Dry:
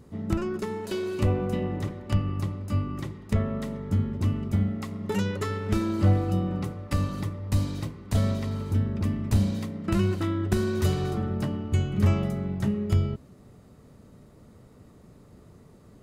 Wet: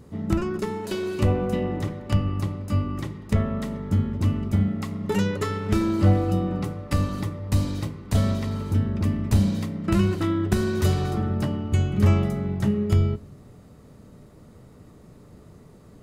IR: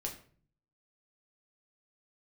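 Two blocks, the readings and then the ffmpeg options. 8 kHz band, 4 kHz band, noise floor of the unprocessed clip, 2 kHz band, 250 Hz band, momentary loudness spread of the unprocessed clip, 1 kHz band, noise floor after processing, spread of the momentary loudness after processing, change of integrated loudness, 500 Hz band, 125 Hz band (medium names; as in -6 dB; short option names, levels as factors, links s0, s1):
+3.0 dB, +3.0 dB, -53 dBFS, +3.0 dB, +3.5 dB, 8 LU, +3.5 dB, -49 dBFS, 8 LU, +3.0 dB, +3.0 dB, +3.0 dB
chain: -filter_complex "[0:a]asplit=2[s0][s1];[1:a]atrim=start_sample=2205[s2];[s1][s2]afir=irnorm=-1:irlink=0,volume=0.299[s3];[s0][s3]amix=inputs=2:normalize=0,volume=1.19"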